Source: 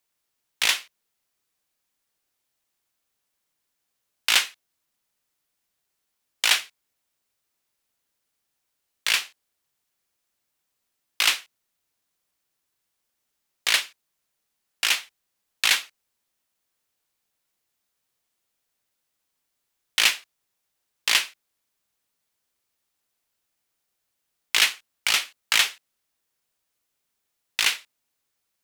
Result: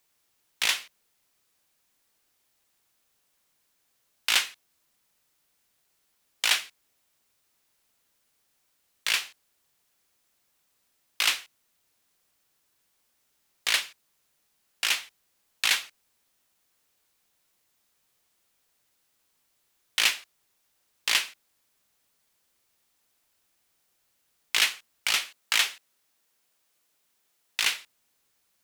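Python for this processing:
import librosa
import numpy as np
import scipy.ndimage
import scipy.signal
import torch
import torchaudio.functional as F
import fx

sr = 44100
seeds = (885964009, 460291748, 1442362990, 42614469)

y = fx.law_mismatch(x, sr, coded='mu')
y = fx.highpass(y, sr, hz=180.0, slope=6, at=(25.25, 27.63))
y = F.gain(torch.from_numpy(y), -4.0).numpy()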